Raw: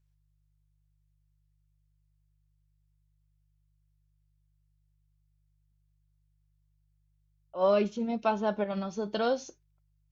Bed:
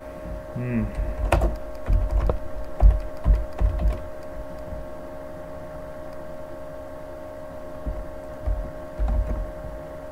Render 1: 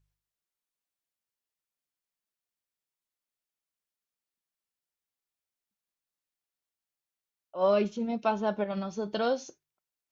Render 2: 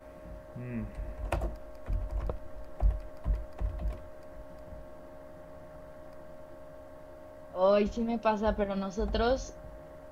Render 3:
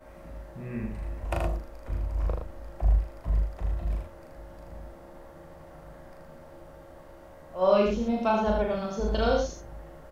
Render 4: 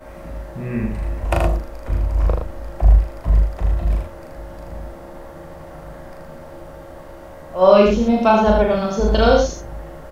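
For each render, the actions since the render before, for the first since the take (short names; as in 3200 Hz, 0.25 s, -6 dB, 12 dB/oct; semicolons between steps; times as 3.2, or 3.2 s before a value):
de-hum 50 Hz, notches 3
add bed -12 dB
doubler 38 ms -2.5 dB; on a send: echo 79 ms -3.5 dB
gain +11 dB; limiter -1 dBFS, peak gain reduction 1.5 dB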